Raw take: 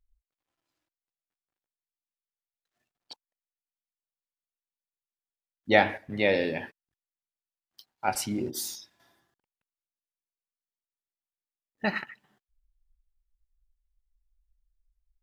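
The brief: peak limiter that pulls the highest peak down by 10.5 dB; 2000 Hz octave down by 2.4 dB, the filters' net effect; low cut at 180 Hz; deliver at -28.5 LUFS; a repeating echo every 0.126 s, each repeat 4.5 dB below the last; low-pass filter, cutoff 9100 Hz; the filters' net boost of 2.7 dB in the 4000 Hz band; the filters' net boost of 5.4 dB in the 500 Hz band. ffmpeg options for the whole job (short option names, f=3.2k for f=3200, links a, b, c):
-af "highpass=180,lowpass=9.1k,equalizer=f=500:t=o:g=6.5,equalizer=f=2k:t=o:g=-4,equalizer=f=4k:t=o:g=4.5,alimiter=limit=-14dB:level=0:latency=1,aecho=1:1:126|252|378|504|630|756|882|1008|1134:0.596|0.357|0.214|0.129|0.0772|0.0463|0.0278|0.0167|0.01,volume=-0.5dB"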